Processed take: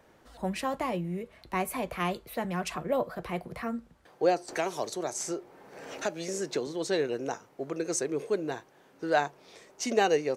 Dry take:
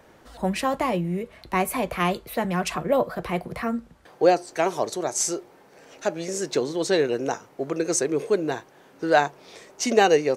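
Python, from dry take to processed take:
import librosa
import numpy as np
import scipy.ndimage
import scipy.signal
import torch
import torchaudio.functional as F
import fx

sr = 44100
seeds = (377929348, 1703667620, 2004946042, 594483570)

y = fx.band_squash(x, sr, depth_pct=70, at=(4.48, 6.67))
y = y * 10.0 ** (-7.0 / 20.0)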